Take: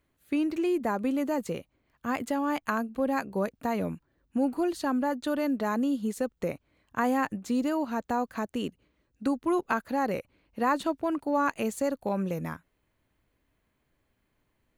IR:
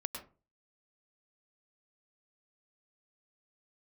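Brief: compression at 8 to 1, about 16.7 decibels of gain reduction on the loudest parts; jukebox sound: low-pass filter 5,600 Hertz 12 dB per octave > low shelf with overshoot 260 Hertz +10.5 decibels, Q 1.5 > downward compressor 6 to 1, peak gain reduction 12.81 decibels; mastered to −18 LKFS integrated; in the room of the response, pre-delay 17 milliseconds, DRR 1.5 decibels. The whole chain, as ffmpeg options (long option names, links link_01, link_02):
-filter_complex "[0:a]acompressor=threshold=-40dB:ratio=8,asplit=2[link_01][link_02];[1:a]atrim=start_sample=2205,adelay=17[link_03];[link_02][link_03]afir=irnorm=-1:irlink=0,volume=-1.5dB[link_04];[link_01][link_04]amix=inputs=2:normalize=0,lowpass=5600,lowshelf=frequency=260:width_type=q:width=1.5:gain=10.5,acompressor=threshold=-39dB:ratio=6,volume=25.5dB"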